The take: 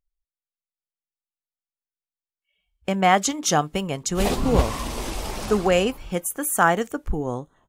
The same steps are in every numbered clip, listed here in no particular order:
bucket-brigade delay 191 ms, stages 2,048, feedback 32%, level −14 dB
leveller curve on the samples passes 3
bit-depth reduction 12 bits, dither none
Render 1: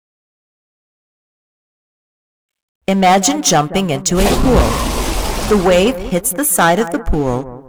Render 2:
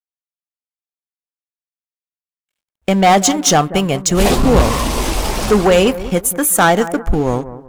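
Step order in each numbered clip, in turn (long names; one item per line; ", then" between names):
leveller curve on the samples, then bucket-brigade delay, then bit-depth reduction
leveller curve on the samples, then bit-depth reduction, then bucket-brigade delay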